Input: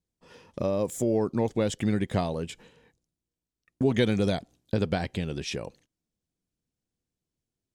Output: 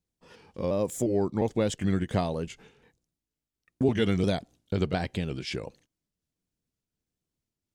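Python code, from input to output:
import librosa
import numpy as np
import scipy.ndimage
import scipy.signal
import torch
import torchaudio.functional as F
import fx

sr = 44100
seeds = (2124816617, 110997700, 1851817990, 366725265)

y = fx.pitch_trill(x, sr, semitones=-1.5, every_ms=353)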